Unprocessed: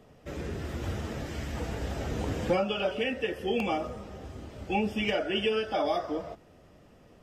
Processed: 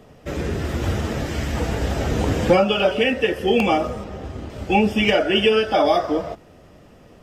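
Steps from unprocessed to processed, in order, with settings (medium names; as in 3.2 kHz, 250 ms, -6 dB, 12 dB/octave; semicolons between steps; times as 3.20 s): 4.04–4.50 s: treble shelf 5.6 kHz -8 dB; in parallel at -8.5 dB: crossover distortion -49 dBFS; on the sum: trim +8.5 dB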